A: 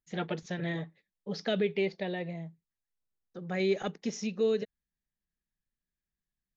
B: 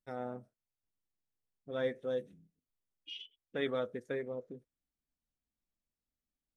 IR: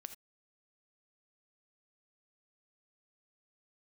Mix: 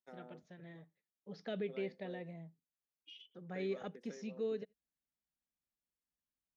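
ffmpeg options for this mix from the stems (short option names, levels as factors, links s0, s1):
-filter_complex "[0:a]highshelf=f=3700:g=-10,volume=0.282,afade=t=in:st=0.86:d=0.7:silence=0.354813,asplit=2[s0][s1];[s1]volume=0.178[s2];[1:a]highpass=f=200:w=0.5412,highpass=f=200:w=1.3066,acompressor=threshold=0.00631:ratio=4,volume=0.422[s3];[2:a]atrim=start_sample=2205[s4];[s2][s4]afir=irnorm=-1:irlink=0[s5];[s0][s3][s5]amix=inputs=3:normalize=0,highpass=42"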